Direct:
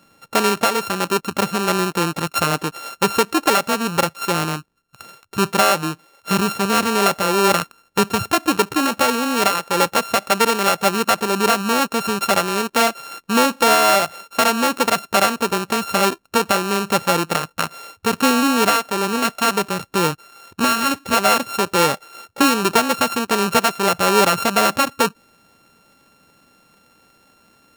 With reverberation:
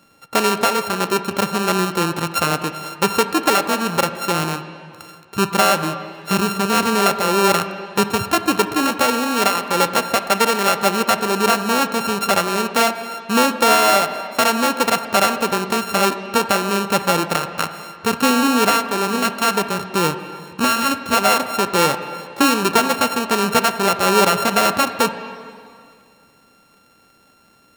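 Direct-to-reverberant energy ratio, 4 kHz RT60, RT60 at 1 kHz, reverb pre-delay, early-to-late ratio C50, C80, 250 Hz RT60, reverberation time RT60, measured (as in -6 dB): 9.5 dB, 2.1 s, 2.3 s, 20 ms, 10.0 dB, 11.0 dB, 2.4 s, 2.3 s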